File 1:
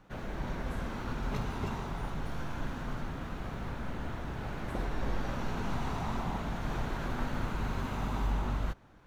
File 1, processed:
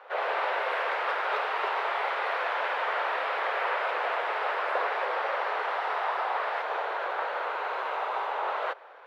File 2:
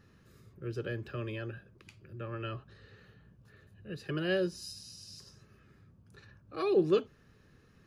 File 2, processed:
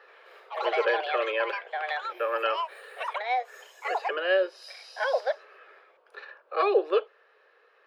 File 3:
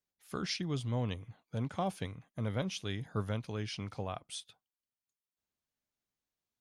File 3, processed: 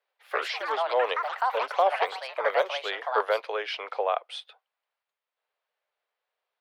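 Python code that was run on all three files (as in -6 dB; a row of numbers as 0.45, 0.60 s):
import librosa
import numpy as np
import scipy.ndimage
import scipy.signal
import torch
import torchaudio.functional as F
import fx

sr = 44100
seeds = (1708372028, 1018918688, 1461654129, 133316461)

y = scipy.signal.sosfilt(scipy.signal.butter(8, 460.0, 'highpass', fs=sr, output='sos'), x)
y = fx.high_shelf(y, sr, hz=6700.0, db=7.5)
y = fx.rider(y, sr, range_db=4, speed_s=0.5)
y = fx.echo_pitch(y, sr, ms=81, semitones=5, count=3, db_per_echo=-3.0)
y = fx.air_absorb(y, sr, metres=420.0)
y = y * 10.0 ** (-30 / 20.0) / np.sqrt(np.mean(np.square(y)))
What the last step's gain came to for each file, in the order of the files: +13.5, +14.5, +16.0 dB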